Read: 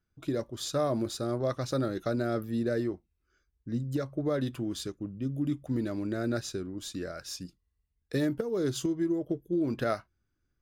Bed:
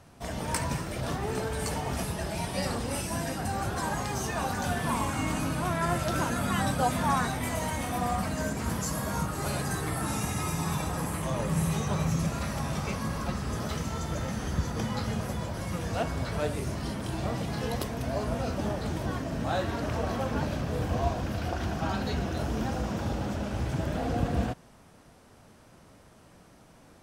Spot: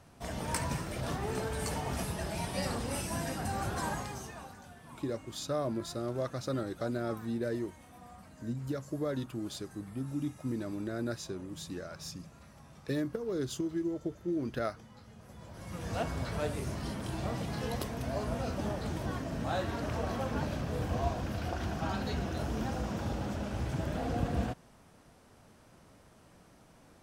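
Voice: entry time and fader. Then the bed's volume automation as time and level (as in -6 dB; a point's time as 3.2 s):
4.75 s, -4.5 dB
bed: 3.89 s -3.5 dB
4.7 s -23 dB
15.14 s -23 dB
15.93 s -4 dB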